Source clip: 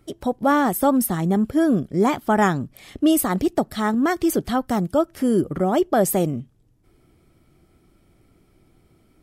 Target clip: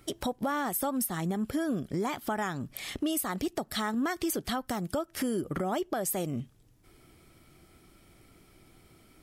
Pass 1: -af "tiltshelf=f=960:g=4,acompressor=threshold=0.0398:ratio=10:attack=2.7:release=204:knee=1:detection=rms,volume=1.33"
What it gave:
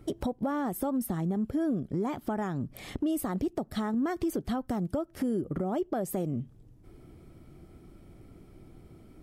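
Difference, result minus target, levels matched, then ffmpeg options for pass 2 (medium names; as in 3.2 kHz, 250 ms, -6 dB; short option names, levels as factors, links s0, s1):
1 kHz band -3.0 dB
-af "tiltshelf=f=960:g=-4.5,acompressor=threshold=0.0398:ratio=10:attack=2.7:release=204:knee=1:detection=rms,volume=1.33"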